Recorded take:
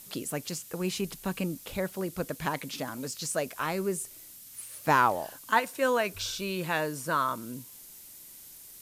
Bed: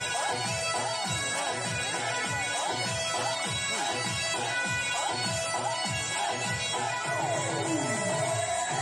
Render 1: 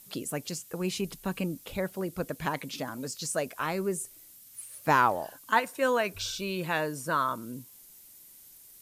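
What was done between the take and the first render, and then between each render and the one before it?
denoiser 6 dB, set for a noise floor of -49 dBFS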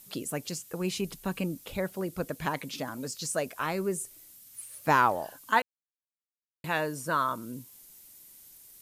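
5.62–6.64 mute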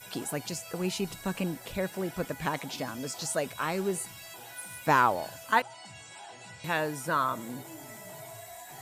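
add bed -17 dB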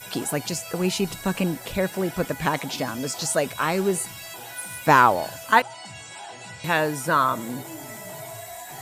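gain +7.5 dB

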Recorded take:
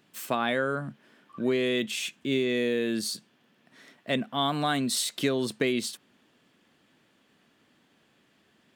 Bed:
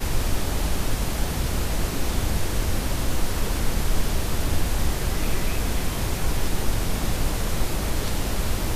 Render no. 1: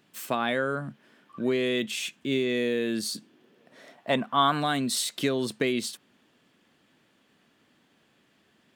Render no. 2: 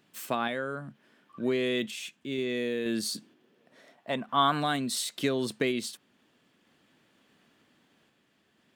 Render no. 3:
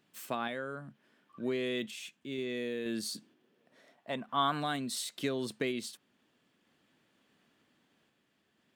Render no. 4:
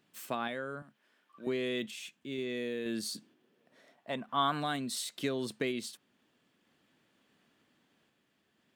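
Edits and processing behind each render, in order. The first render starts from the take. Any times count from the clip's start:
3.14–4.59 bell 250 Hz -> 1600 Hz +13.5 dB
random-step tremolo 2.1 Hz
gain -5.5 dB
0.82–1.47 HPF 690 Hz 6 dB/oct

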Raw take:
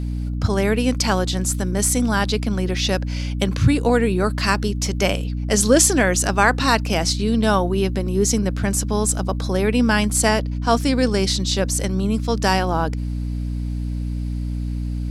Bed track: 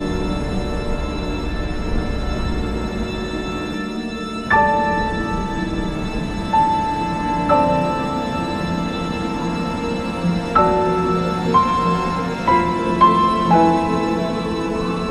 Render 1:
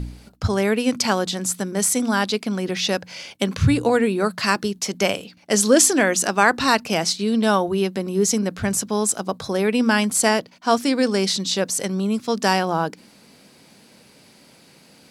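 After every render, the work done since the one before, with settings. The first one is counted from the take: de-hum 60 Hz, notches 5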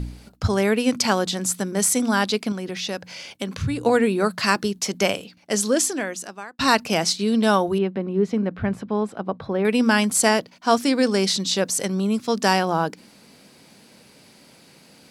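2.52–3.86 compressor 1.5:1, threshold -35 dBFS; 4.96–6.59 fade out; 7.78–9.65 air absorption 470 m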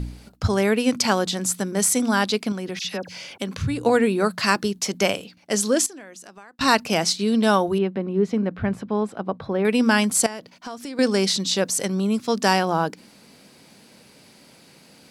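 2.79–3.38 dispersion lows, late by 55 ms, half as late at 1900 Hz; 5.86–6.61 compressor 4:1, threshold -40 dBFS; 10.26–10.99 compressor, threshold -31 dBFS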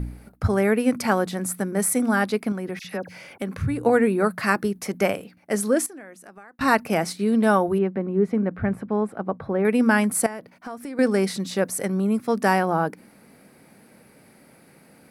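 band shelf 4600 Hz -12.5 dB; notch 1000 Hz, Q 14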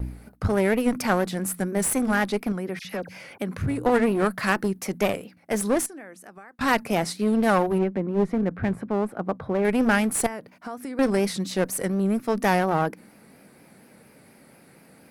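one-sided clip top -24.5 dBFS; vibrato 4.2 Hz 78 cents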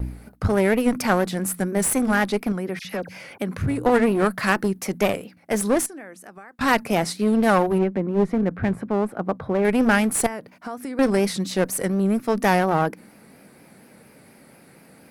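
gain +2.5 dB

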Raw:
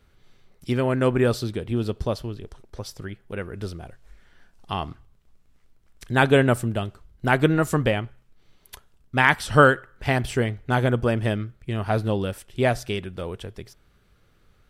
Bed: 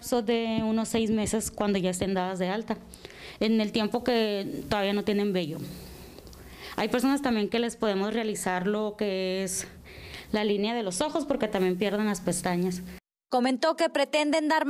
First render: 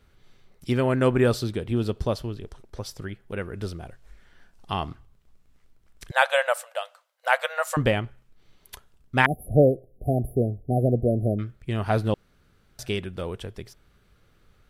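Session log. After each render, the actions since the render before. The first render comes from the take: 6.11–7.77 brick-wall FIR high-pass 490 Hz; 9.26–11.39 brick-wall FIR band-stop 770–9900 Hz; 12.14–12.79 room tone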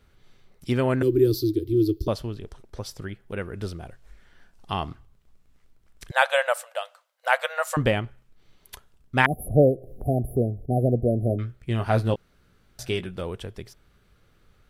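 1.02–2.08 EQ curve 120 Hz 0 dB, 200 Hz -28 dB, 320 Hz +15 dB, 640 Hz -27 dB, 980 Hz -26 dB, 2800 Hz -15 dB, 4600 Hz +3 dB, 8500 Hz -9 dB, 13000 Hz +13 dB; 9.33–10.66 upward compressor, threshold -26 dBFS; 11.28–13.2 doubler 17 ms -8 dB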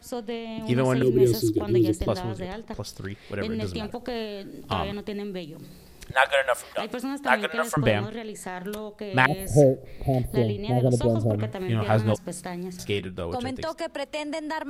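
add bed -6.5 dB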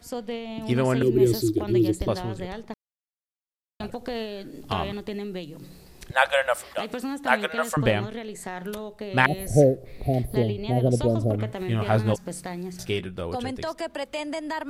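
2.74–3.8 mute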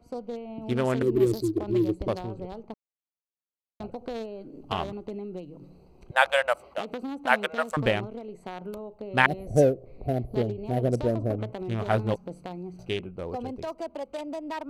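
Wiener smoothing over 25 samples; low shelf 300 Hz -6 dB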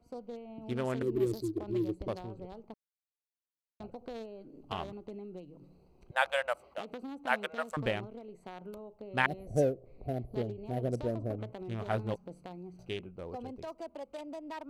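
gain -8 dB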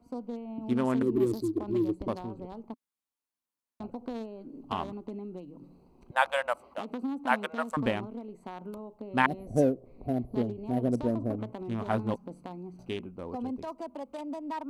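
fifteen-band EQ 250 Hz +11 dB, 1000 Hz +8 dB, 10000 Hz +3 dB

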